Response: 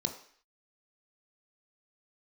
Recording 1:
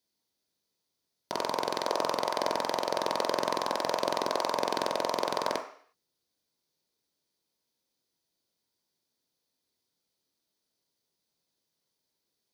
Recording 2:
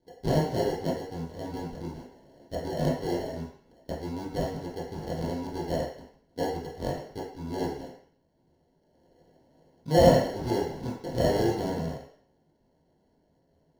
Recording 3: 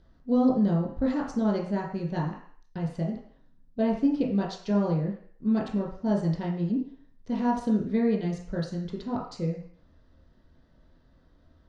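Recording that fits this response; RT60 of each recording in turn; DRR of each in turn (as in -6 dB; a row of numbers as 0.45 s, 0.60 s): 1; 0.55 s, 0.55 s, 0.55 s; 3.0 dB, -8.0 dB, -3.0 dB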